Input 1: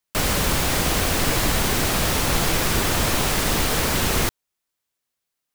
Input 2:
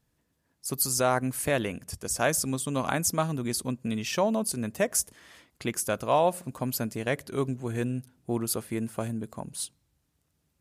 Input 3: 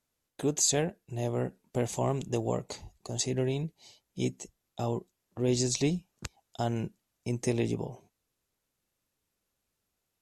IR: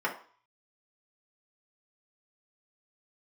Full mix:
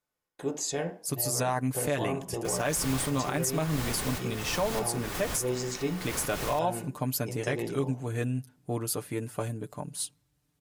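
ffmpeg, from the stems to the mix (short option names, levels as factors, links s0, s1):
-filter_complex "[0:a]adelay=2300,volume=0.2,asplit=2[s0][s1];[s1]volume=0.133[s2];[1:a]aecho=1:1:6.8:0.65,adelay=400,volume=0.841[s3];[2:a]volume=0.335,asplit=3[s4][s5][s6];[s5]volume=0.668[s7];[s6]apad=whole_len=345764[s8];[s0][s8]sidechaincompress=threshold=0.00355:ratio=8:attack=8.8:release=192[s9];[3:a]atrim=start_sample=2205[s10];[s2][s7]amix=inputs=2:normalize=0[s11];[s11][s10]afir=irnorm=-1:irlink=0[s12];[s9][s3][s4][s12]amix=inputs=4:normalize=0,alimiter=limit=0.119:level=0:latency=1:release=63"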